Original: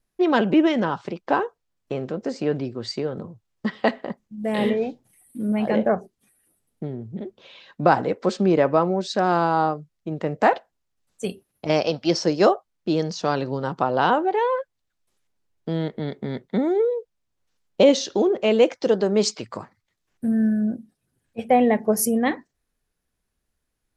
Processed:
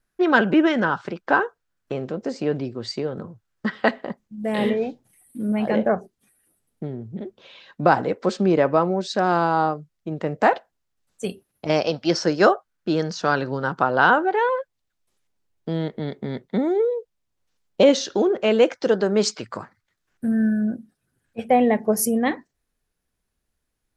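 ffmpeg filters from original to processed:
ffmpeg -i in.wav -af "asetnsamples=nb_out_samples=441:pad=0,asendcmd='1.92 equalizer g 0;3.18 equalizer g 9.5;3.89 equalizer g 2;12.1 equalizer g 10.5;14.49 equalizer g -0.5;17.83 equalizer g 7.5;21.46 equalizer g 0',equalizer=frequency=1500:width_type=o:width=0.52:gain=10" out.wav

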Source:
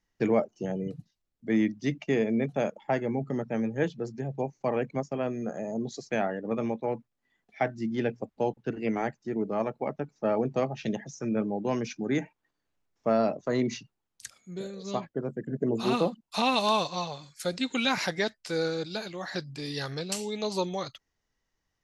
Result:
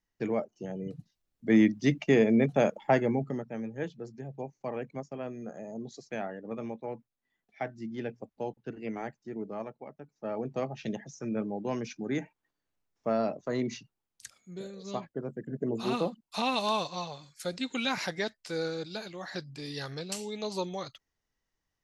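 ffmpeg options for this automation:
ffmpeg -i in.wav -af "volume=15.5dB,afade=type=in:start_time=0.73:duration=0.84:silence=0.334965,afade=type=out:start_time=3:duration=0.46:silence=0.281838,afade=type=out:start_time=9.49:duration=0.45:silence=0.375837,afade=type=in:start_time=9.94:duration=0.79:silence=0.251189" out.wav

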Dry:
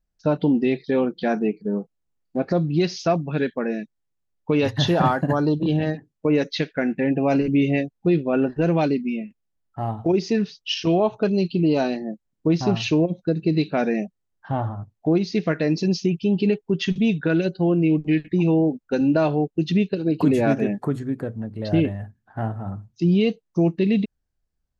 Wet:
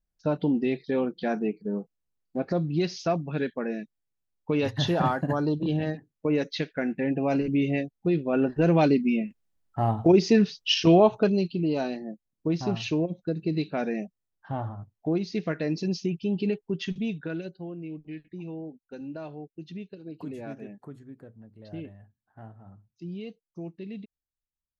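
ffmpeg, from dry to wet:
ffmpeg -i in.wav -af "volume=2dB,afade=type=in:start_time=8.19:duration=0.99:silence=0.421697,afade=type=out:start_time=11.03:duration=0.47:silence=0.354813,afade=type=out:start_time=16.62:duration=1.09:silence=0.251189" out.wav

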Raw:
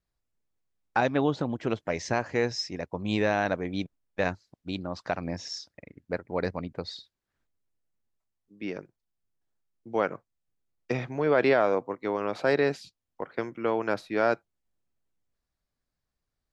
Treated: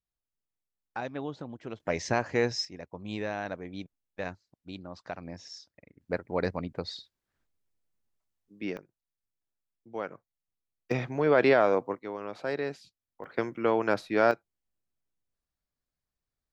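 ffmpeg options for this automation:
ffmpeg -i in.wav -af "asetnsamples=nb_out_samples=441:pad=0,asendcmd='1.8 volume volume 0dB;2.65 volume volume -8.5dB;6.01 volume volume 0dB;8.77 volume volume -9dB;10.91 volume volume 0.5dB;11.99 volume volume -8dB;13.24 volume volume 1.5dB;14.31 volume volume -5.5dB',volume=-11dB" out.wav

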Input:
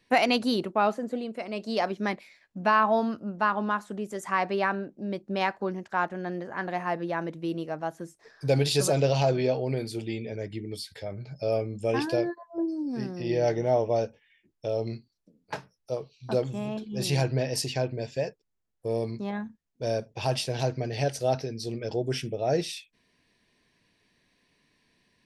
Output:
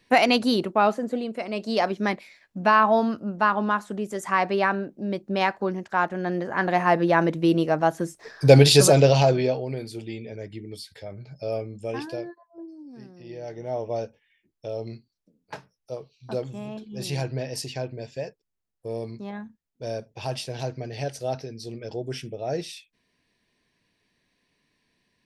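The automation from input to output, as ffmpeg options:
ffmpeg -i in.wav -af "volume=20dB,afade=type=in:start_time=6.03:duration=1.16:silence=0.446684,afade=type=out:start_time=8.54:duration=1.13:silence=0.223872,afade=type=out:start_time=11.58:duration=1:silence=0.316228,afade=type=in:start_time=13.48:duration=0.46:silence=0.354813" out.wav

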